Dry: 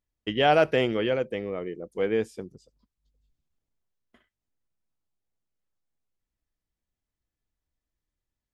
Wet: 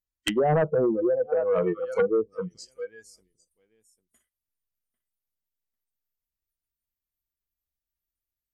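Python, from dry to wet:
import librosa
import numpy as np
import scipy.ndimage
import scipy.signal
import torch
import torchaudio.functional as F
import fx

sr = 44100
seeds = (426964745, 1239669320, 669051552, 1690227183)

p1 = fx.high_shelf(x, sr, hz=2700.0, db=9.5)
p2 = p1 + fx.echo_feedback(p1, sr, ms=797, feedback_pct=28, wet_db=-18.5, dry=0)
p3 = fx.env_lowpass_down(p2, sr, base_hz=320.0, full_db=-23.0)
p4 = fx.noise_reduce_blind(p3, sr, reduce_db=26)
p5 = fx.low_shelf(p4, sr, hz=130.0, db=6.0)
p6 = fx.fold_sine(p5, sr, drive_db=17, ceiling_db=-8.0)
y = F.gain(torch.from_numpy(p6), -9.0).numpy()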